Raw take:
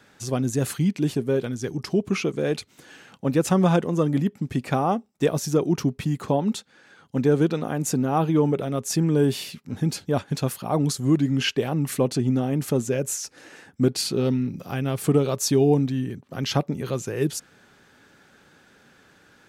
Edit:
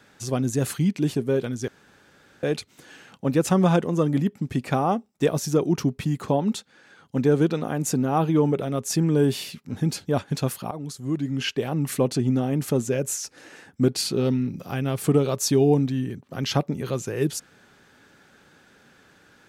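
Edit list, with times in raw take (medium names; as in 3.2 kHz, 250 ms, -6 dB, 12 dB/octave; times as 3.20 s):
1.68–2.43 s: room tone
10.71–11.91 s: fade in, from -15 dB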